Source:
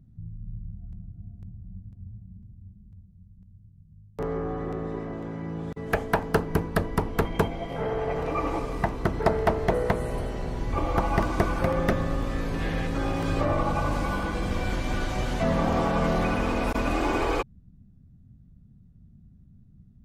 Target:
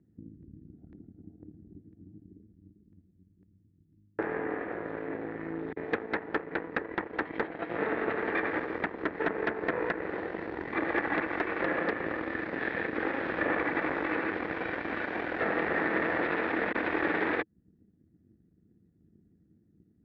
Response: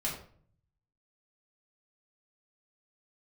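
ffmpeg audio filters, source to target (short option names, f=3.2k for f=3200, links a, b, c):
-filter_complex "[0:a]acrossover=split=670|2400[a][b][c];[a]acompressor=threshold=-36dB:ratio=4[d];[b]acompressor=threshold=-31dB:ratio=4[e];[c]acompressor=threshold=-51dB:ratio=4[f];[d][e][f]amix=inputs=3:normalize=0,aeval=exprs='0.211*(cos(1*acos(clip(val(0)/0.211,-1,1)))-cos(1*PI/2))+0.106*(cos(8*acos(clip(val(0)/0.211,-1,1)))-cos(8*PI/2))':c=same,highpass=120,equalizer=f=130:t=q:w=4:g=-9,equalizer=f=320:t=q:w=4:g=10,equalizer=f=460:t=q:w=4:g=7,equalizer=f=1.1k:t=q:w=4:g=-3,equalizer=f=1.8k:t=q:w=4:g=9,equalizer=f=3k:t=q:w=4:g=-7,lowpass=f=3.2k:w=0.5412,lowpass=f=3.2k:w=1.3066,volume=-7dB"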